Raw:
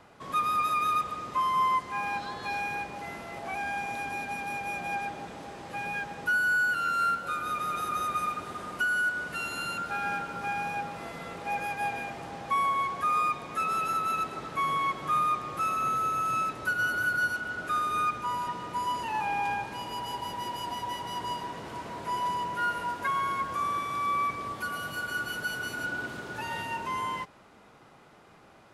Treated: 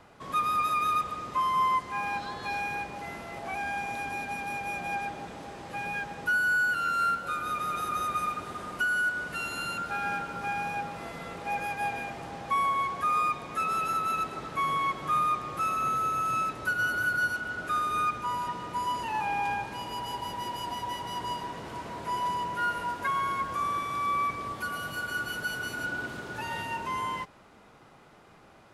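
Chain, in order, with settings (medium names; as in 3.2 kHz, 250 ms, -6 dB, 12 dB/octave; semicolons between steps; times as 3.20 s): bass shelf 64 Hz +5.5 dB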